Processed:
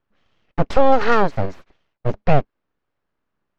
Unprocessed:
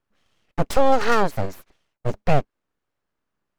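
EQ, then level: air absorption 160 m; +3.5 dB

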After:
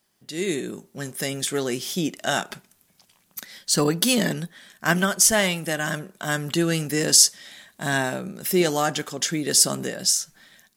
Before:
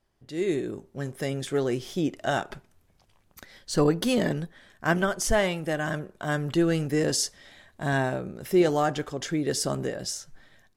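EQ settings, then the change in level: tilt +4 dB/oct; bell 190 Hz +12.5 dB 1.1 oct; +2.0 dB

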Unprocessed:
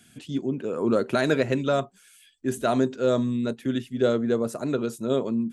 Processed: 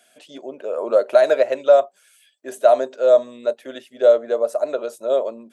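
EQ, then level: resonant high-pass 600 Hz, resonance Q 6.9; notch 7100 Hz, Q 23; -1.0 dB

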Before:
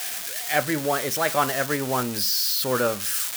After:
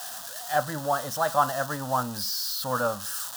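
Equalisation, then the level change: low shelf 200 Hz -5 dB; high shelf 4300 Hz -10.5 dB; fixed phaser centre 930 Hz, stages 4; +2.5 dB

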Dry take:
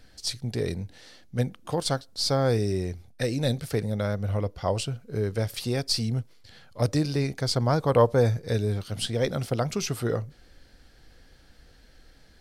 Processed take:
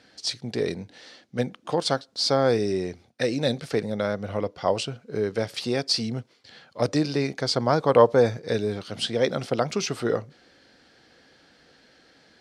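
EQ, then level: BPF 210–6000 Hz; +4.0 dB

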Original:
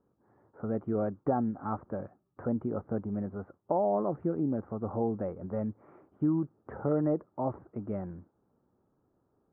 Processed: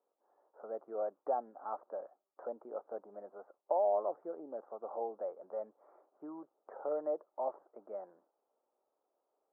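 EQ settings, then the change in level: ladder high-pass 490 Hz, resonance 40%; LPF 1200 Hz 12 dB/oct; +2.0 dB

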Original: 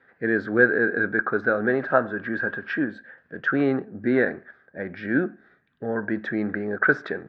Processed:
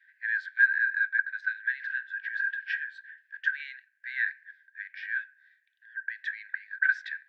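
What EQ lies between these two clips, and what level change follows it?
brick-wall FIR high-pass 1500 Hz; -1.0 dB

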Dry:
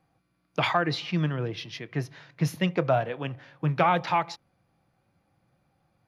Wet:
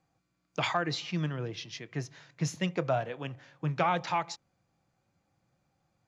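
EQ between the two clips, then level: synth low-pass 7100 Hz, resonance Q 4; -5.5 dB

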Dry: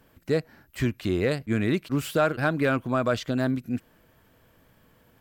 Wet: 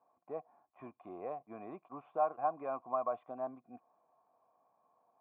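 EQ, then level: vocal tract filter a; HPF 220 Hz 12 dB/oct; +3.5 dB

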